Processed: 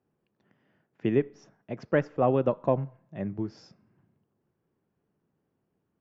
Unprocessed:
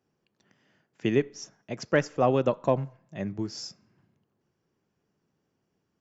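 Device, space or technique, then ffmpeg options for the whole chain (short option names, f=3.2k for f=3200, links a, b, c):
phone in a pocket: -af "lowpass=3.5k,highshelf=f=2.1k:g=-10"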